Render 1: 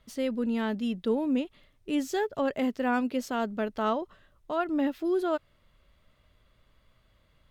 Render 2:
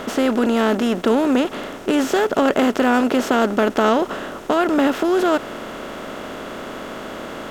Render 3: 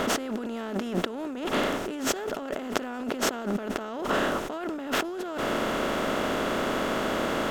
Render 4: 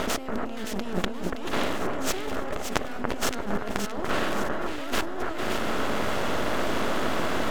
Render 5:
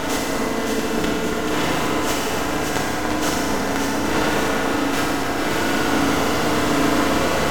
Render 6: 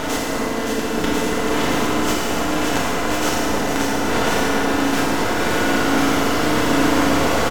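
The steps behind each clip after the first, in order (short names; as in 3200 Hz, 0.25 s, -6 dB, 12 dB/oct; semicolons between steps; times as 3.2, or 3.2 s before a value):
per-bin compression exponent 0.4; gain +7 dB
negative-ratio compressor -27 dBFS, ratio -1; gain -3 dB
half-wave rectifier; on a send: echo with dull and thin repeats by turns 0.285 s, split 1800 Hz, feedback 64%, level -3 dB; on the sum: gain +2.5 dB
per-bin compression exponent 0.6; FDN reverb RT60 2.9 s, high-frequency decay 0.85×, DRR -6.5 dB; gain -2.5 dB
echo 1.043 s -4 dB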